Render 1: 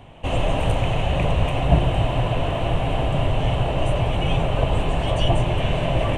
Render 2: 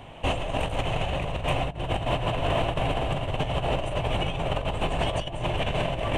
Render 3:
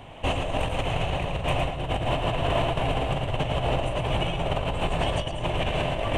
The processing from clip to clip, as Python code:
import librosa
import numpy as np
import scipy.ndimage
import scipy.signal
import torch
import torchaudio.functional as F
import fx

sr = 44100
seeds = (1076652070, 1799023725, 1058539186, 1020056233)

y1 = fx.low_shelf(x, sr, hz=360.0, db=-5.0)
y1 = fx.over_compress(y1, sr, threshold_db=-26.0, ratio=-0.5)
y2 = y1 + 10.0 ** (-6.5 / 20.0) * np.pad(y1, (int(112 * sr / 1000.0), 0))[:len(y1)]